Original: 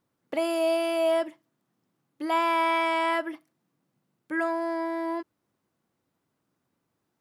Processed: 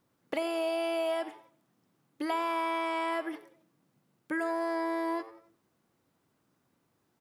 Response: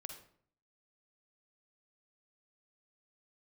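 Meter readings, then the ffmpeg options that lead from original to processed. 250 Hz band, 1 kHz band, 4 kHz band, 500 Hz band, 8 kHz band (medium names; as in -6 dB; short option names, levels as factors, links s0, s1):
-4.0 dB, -6.0 dB, -5.5 dB, -5.5 dB, -6.0 dB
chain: -filter_complex "[0:a]acrossover=split=920|4500[s0][s1][s2];[s0]acompressor=threshold=0.0141:ratio=4[s3];[s1]acompressor=threshold=0.00891:ratio=4[s4];[s2]acompressor=threshold=0.00126:ratio=4[s5];[s3][s4][s5]amix=inputs=3:normalize=0,asplit=4[s6][s7][s8][s9];[s7]adelay=90,afreqshift=110,volume=0.119[s10];[s8]adelay=180,afreqshift=220,volume=0.0501[s11];[s9]adelay=270,afreqshift=330,volume=0.0209[s12];[s6][s10][s11][s12]amix=inputs=4:normalize=0,asplit=2[s13][s14];[1:a]atrim=start_sample=2205[s15];[s14][s15]afir=irnorm=-1:irlink=0,volume=0.501[s16];[s13][s16]amix=inputs=2:normalize=0,volume=1.19"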